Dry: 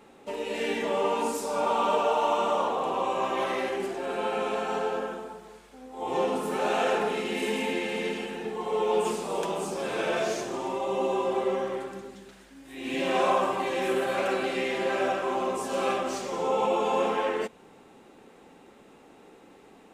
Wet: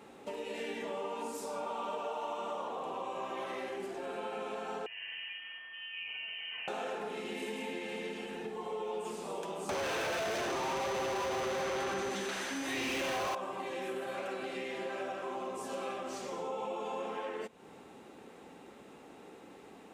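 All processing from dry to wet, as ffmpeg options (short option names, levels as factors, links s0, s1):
-filter_complex "[0:a]asettb=1/sr,asplit=3[s0][s1][s2];[s0]atrim=end=4.864[s3];[s1]atrim=start=4.86:end=6.68,asetpts=PTS-STARTPTS,afade=t=in:d=0.004:c=qsin,afade=t=out:st=1.816:d=0.004:c=qsin,acompressor=threshold=0.0178:ratio=6:attack=3.2:release=140:knee=1:detection=peak,aeval=exprs='val(0)+0.00447*sin(2*PI*1500*n/s)':c=same,lowpass=f=2800:t=q:w=0.5098,lowpass=f=2800:t=q:w=0.6013,lowpass=f=2800:t=q:w=0.9,lowpass=f=2800:t=q:w=2.563,afreqshift=-3300[s4];[s2]atrim=start=6.676[s5];[s3][s4]acrossfade=d=0.004:c1=hsin:c2=qsin[s6];[s6][s5]acrossfade=d=0.004:c1=qsin:c2=hsin,asettb=1/sr,asplit=3[s7][s8][s9];[s7]atrim=end=9.694[s10];[s8]atrim=start=9.69:end=13.35,asetpts=PTS-STARTPTS,afade=t=in:d=0.004:c=qsin,afade=t=out:st=3.656:d=0.004:c=qsin,acrossover=split=4100[s11][s12];[s12]acompressor=threshold=0.00141:ratio=4:attack=1:release=60[s13];[s11][s13]amix=inputs=2:normalize=0,asplit=2[s14][s15];[s15]highpass=f=720:p=1,volume=89.1,asoftclip=type=tanh:threshold=0.211[s16];[s14][s16]amix=inputs=2:normalize=0,lowpass=f=5000:p=1,volume=0.501,aeval=exprs='val(0)+0.0126*sin(2*PI*6100*n/s)':c=same[s17];[s9]atrim=start=13.346[s18];[s10][s17]acrossfade=d=0.004:c1=hsin:c2=qsin[s19];[s19][s18]acrossfade=d=0.004:c1=qsin:c2=hsin,highpass=55,acompressor=threshold=0.01:ratio=3"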